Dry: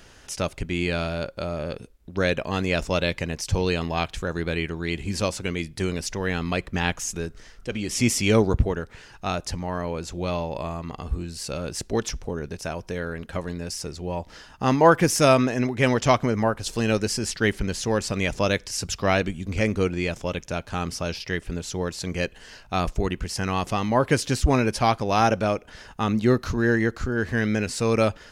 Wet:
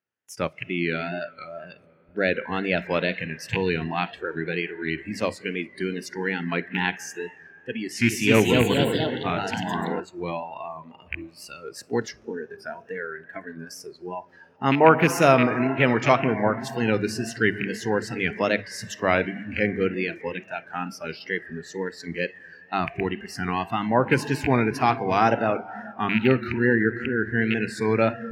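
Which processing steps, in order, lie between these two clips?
rattle on loud lows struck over -22 dBFS, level -12 dBFS; high-pass 110 Hz 24 dB/octave; gate with hold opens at -38 dBFS; graphic EQ 2/4/8 kHz +4/-5/-9 dB; reverberation RT60 5.0 s, pre-delay 35 ms, DRR 9.5 dB; wow and flutter 82 cents; hum notches 50/100/150/200 Hz; 7.80–10.00 s: ever faster or slower copies 280 ms, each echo +2 st, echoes 3; spectral noise reduction 18 dB

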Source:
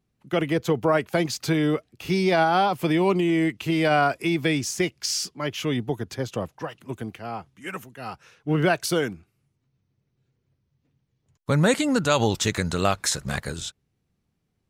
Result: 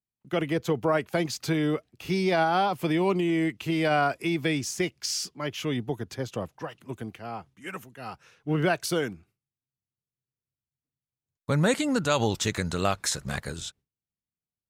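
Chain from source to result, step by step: gate with hold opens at -49 dBFS; trim -3.5 dB

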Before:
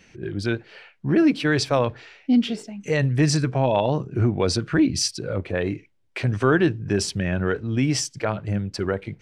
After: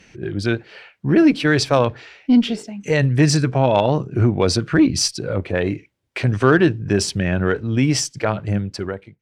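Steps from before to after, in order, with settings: fade out at the end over 0.66 s; Chebyshev shaper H 3 -25 dB, 8 -39 dB, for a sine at -6.5 dBFS; trim +5.5 dB

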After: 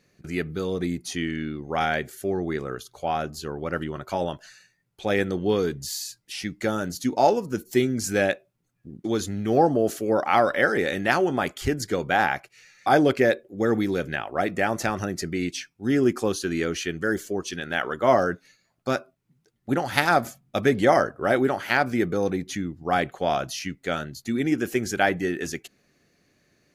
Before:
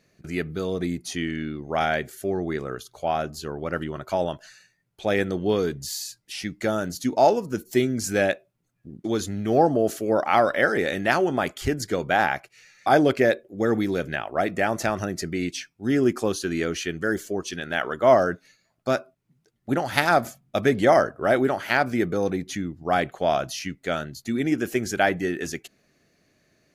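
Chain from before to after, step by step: band-stop 640 Hz, Q 12

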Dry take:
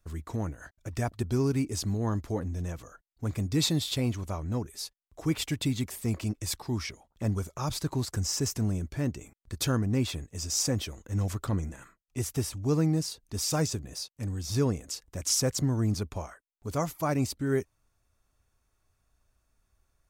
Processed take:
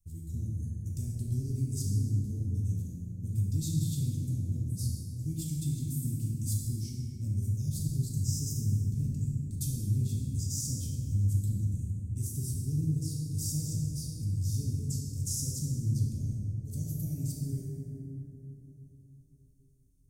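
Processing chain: compression 2:1, threshold -31 dBFS, peak gain reduction 6 dB; Chebyshev band-stop 140–8300 Hz, order 2; reverberation RT60 4.0 s, pre-delay 3 ms, DRR -5.5 dB; trim -2 dB

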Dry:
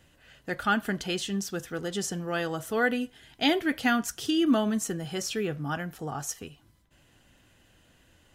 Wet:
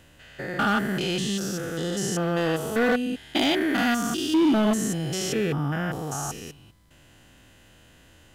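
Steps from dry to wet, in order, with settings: spectrogram pixelated in time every 200 ms; overload inside the chain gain 25 dB; trim +8.5 dB

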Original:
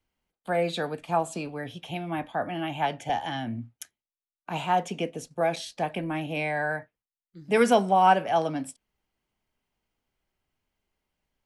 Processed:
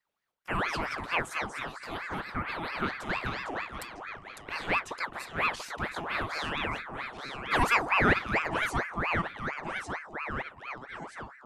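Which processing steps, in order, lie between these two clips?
ever faster or slower copies 86 ms, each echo -2 st, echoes 3, each echo -6 dB; ring modulator with a swept carrier 1.2 kHz, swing 60%, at 4.4 Hz; trim -2 dB

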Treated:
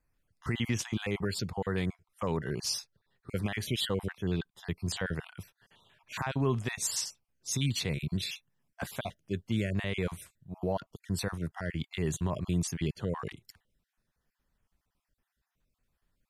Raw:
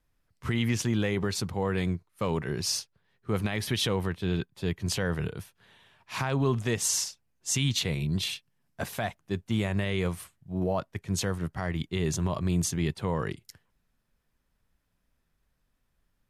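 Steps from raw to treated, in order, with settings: random holes in the spectrogram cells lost 33%; trim -2.5 dB

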